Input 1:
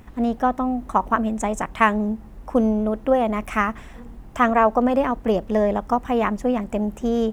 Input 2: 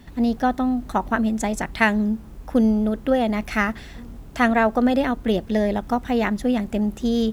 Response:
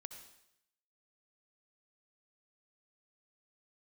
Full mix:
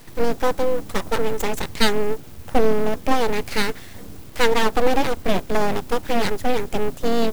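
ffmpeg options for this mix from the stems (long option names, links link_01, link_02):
-filter_complex "[0:a]aeval=exprs='sgn(val(0))*max(abs(val(0))-0.0316,0)':channel_layout=same,volume=0dB[link_01];[1:a]equalizer=frequency=6100:width_type=o:width=2.8:gain=-8,acrusher=bits=8:mix=0:aa=0.000001,volume=2dB[link_02];[link_01][link_02]amix=inputs=2:normalize=0,highshelf=frequency=3100:gain=9,aeval=exprs='abs(val(0))':channel_layout=same"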